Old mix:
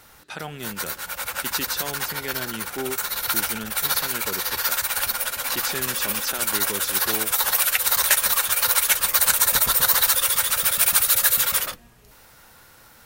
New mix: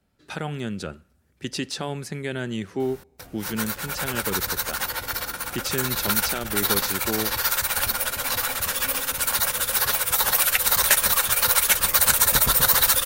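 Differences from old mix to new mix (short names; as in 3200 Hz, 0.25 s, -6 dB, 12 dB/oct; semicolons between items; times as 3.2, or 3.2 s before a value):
background: entry +2.80 s; master: add low shelf 410 Hz +8.5 dB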